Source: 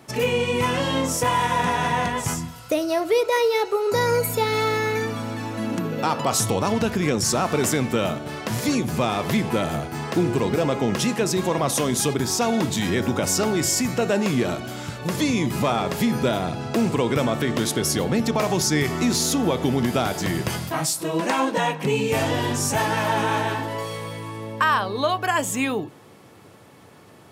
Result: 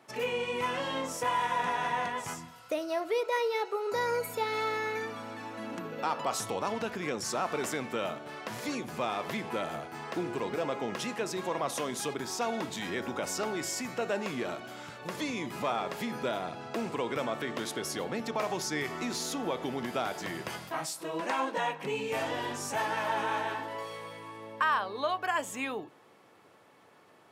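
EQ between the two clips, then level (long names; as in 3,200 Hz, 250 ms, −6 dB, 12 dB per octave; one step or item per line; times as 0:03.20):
high-pass filter 700 Hz 6 dB per octave
high-shelf EQ 3,500 Hz −10.5 dB
−5.0 dB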